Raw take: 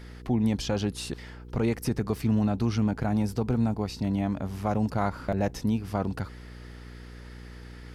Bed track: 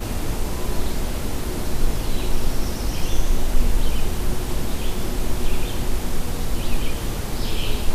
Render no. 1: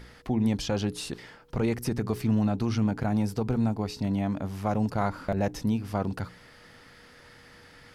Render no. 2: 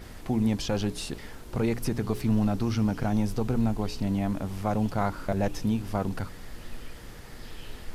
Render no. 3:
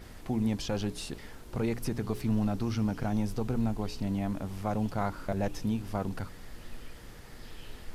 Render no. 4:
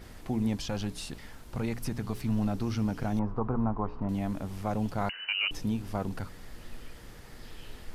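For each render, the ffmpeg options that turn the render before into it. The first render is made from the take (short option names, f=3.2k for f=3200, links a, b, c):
-af "bandreject=f=60:t=h:w=4,bandreject=f=120:t=h:w=4,bandreject=f=180:t=h:w=4,bandreject=f=240:t=h:w=4,bandreject=f=300:t=h:w=4,bandreject=f=360:t=h:w=4,bandreject=f=420:t=h:w=4"
-filter_complex "[1:a]volume=-19dB[a];[0:a][a]amix=inputs=2:normalize=0"
-af "volume=-4dB"
-filter_complex "[0:a]asettb=1/sr,asplit=3[a][b][c];[a]atrim=end=0.574[d];[b]atrim=start=0.57:end=2.39,asetpts=PTS-STARTPTS,afade=t=in:d=0.004:c=qsin,afade=t=out:st=1.816:d=0.004:c=qsin,equalizer=f=400:t=o:w=0.77:g=-6[e];[c]atrim=start=2.386[f];[d][e]acrossfade=d=0.004:c1=hsin:c2=qsin[g];[g][f]acrossfade=d=0.004:c1=qsin:c2=hsin,asettb=1/sr,asplit=3[h][i][j];[h]atrim=end=3.194[k];[i]atrim=start=3.19:end=4.09,asetpts=PTS-STARTPTS,afade=t=in:d=0.004:c=qsin,afade=t=out:st=0.896:d=0.004:c=qsin,lowpass=f=1.1k:t=q:w=4[l];[j]atrim=start=4.086[m];[k][l]acrossfade=d=0.004:c1=hsin:c2=qsin[n];[n][m]acrossfade=d=0.004:c1=qsin:c2=hsin,asettb=1/sr,asplit=3[o][p][q];[o]atrim=end=5.094[r];[p]atrim=start=5.09:end=5.51,asetpts=PTS-STARTPTS,afade=t=in:d=0.004:c=qsin,afade=t=out:st=0.416:d=0.004:c=qsin,lowpass=f=2.6k:t=q:w=0.5098,lowpass=f=2.6k:t=q:w=0.6013,lowpass=f=2.6k:t=q:w=0.9,lowpass=f=2.6k:t=q:w=2.563,afreqshift=-3000[s];[q]atrim=start=5.506[t];[r][s]acrossfade=d=0.004:c1=hsin:c2=qsin[u];[u][t]acrossfade=d=0.004:c1=qsin:c2=hsin"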